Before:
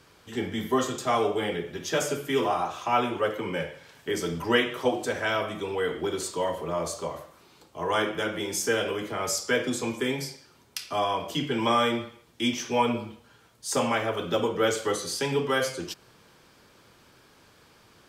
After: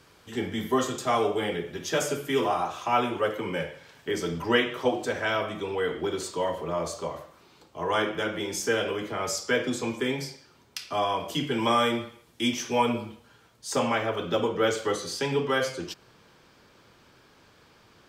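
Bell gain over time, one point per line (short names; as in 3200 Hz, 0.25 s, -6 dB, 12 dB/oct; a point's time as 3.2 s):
bell 11000 Hz 1 oct
3.58 s 0 dB
4.09 s -6.5 dB
10.9 s -6.5 dB
11.35 s +3 dB
12.98 s +3 dB
13.78 s -8 dB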